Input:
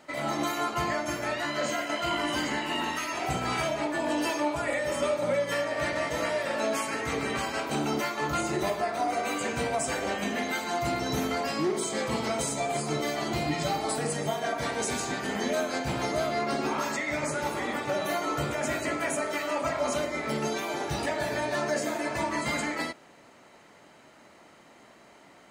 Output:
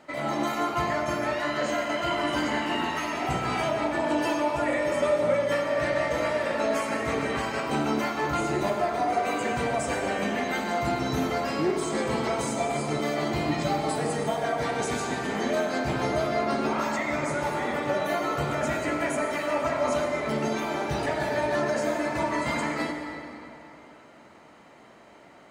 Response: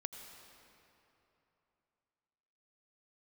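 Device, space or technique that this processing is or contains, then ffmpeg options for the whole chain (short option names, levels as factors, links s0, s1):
swimming-pool hall: -filter_complex "[1:a]atrim=start_sample=2205[s0];[0:a][s0]afir=irnorm=-1:irlink=0,highshelf=f=3500:g=-7.5,volume=1.78"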